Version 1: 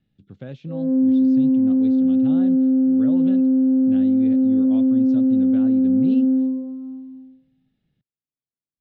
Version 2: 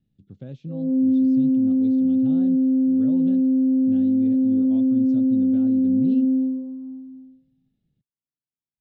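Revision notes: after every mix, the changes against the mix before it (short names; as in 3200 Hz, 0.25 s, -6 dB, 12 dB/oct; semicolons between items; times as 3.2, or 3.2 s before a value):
master: add bell 1600 Hz -12 dB 2.9 oct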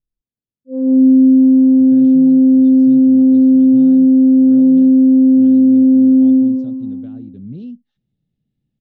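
speech: entry +1.50 s; background +10.0 dB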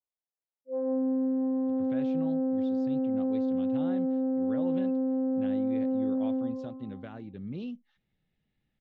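background: add band-pass 780 Hz, Q 1.7; master: add graphic EQ 125/250/1000/2000 Hz -9/-6/+8/+11 dB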